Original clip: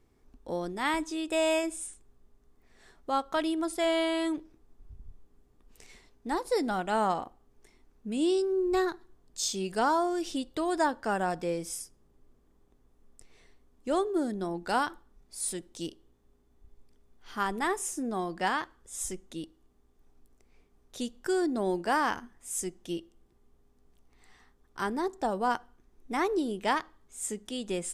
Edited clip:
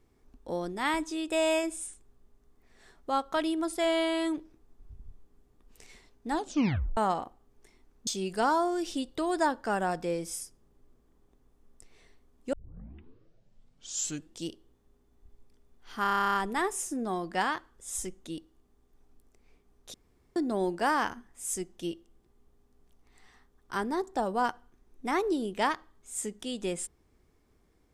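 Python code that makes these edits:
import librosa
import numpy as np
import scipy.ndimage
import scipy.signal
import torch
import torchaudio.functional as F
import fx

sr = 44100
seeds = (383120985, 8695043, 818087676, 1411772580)

y = fx.edit(x, sr, fx.tape_stop(start_s=6.31, length_s=0.66),
    fx.cut(start_s=8.07, length_s=1.39),
    fx.tape_start(start_s=13.92, length_s=1.93),
    fx.stutter(start_s=17.41, slice_s=0.03, count=12),
    fx.room_tone_fill(start_s=21.0, length_s=0.42), tone=tone)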